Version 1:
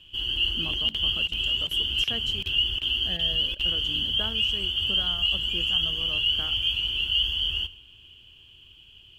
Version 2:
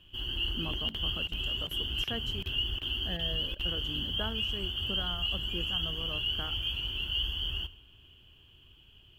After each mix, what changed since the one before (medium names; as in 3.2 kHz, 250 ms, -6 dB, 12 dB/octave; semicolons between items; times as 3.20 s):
master: add high-order bell 4.8 kHz -8.5 dB 2.4 oct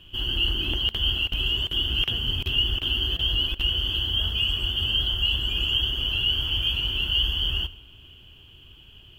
speech -10.5 dB; background +8.5 dB